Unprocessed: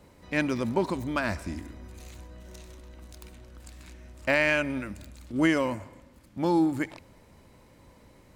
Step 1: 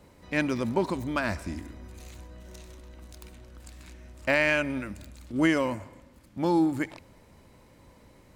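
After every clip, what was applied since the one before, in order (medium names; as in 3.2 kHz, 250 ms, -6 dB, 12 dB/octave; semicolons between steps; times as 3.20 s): no audible change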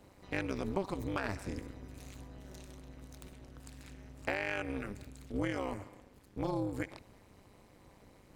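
compression 5:1, threshold -28 dBFS, peak gain reduction 9.5 dB; AM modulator 200 Hz, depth 100%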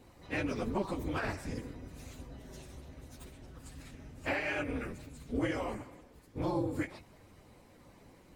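phase randomisation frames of 50 ms; trim +1.5 dB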